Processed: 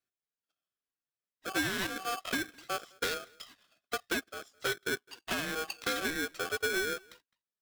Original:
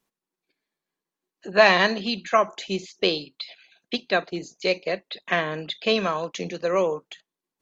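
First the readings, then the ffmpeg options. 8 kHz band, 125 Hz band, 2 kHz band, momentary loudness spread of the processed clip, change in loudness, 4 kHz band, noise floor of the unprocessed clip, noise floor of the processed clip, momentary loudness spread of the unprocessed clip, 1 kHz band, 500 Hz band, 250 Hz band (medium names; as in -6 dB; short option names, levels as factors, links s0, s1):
no reading, -12.0 dB, -7.5 dB, 9 LU, -10.5 dB, -9.0 dB, under -85 dBFS, under -85 dBFS, 15 LU, -12.5 dB, -15.0 dB, -9.5 dB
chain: -filter_complex "[0:a]afftfilt=real='re*pow(10,9/40*sin(2*PI*(2*log(max(b,1)*sr/1024/100)/log(2)-(-1.9)*(pts-256)/sr)))':imag='im*pow(10,9/40*sin(2*PI*(2*log(max(b,1)*sr/1024/100)/log(2)-(-1.9)*(pts-256)/sr)))':win_size=1024:overlap=0.75,afwtdn=0.0447,acrossover=split=5200[s0][s1];[s1]acompressor=threshold=0.00447:ratio=4:attack=1:release=60[s2];[s0][s2]amix=inputs=2:normalize=0,highpass=390,highshelf=f=3300:g=-9.5,aecho=1:1:1.4:0.76,acompressor=threshold=0.0224:ratio=6,asoftclip=type=tanh:threshold=0.0335,equalizer=f=1100:t=o:w=0.99:g=-7,asplit=2[s3][s4];[s4]adelay=210,highpass=300,lowpass=3400,asoftclip=type=hard:threshold=0.0119,volume=0.0631[s5];[s3][s5]amix=inputs=2:normalize=0,aeval=exprs='val(0)*sgn(sin(2*PI*950*n/s))':c=same,volume=2.11"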